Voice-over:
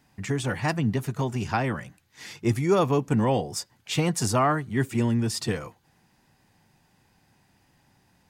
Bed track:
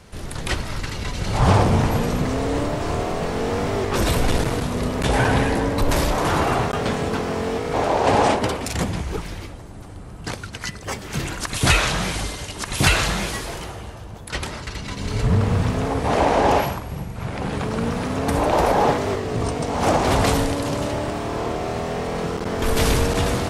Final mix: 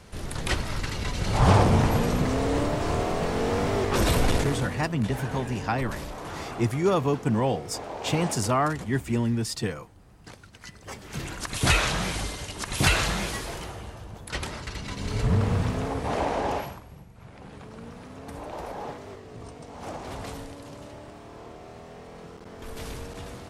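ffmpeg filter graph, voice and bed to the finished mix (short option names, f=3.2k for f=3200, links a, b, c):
-filter_complex "[0:a]adelay=4150,volume=-1.5dB[a];[1:a]volume=9.5dB,afade=t=out:st=4.25:d=0.63:silence=0.199526,afade=t=in:st=10.57:d=1.16:silence=0.251189,afade=t=out:st=15.46:d=1.59:silence=0.199526[b];[a][b]amix=inputs=2:normalize=0"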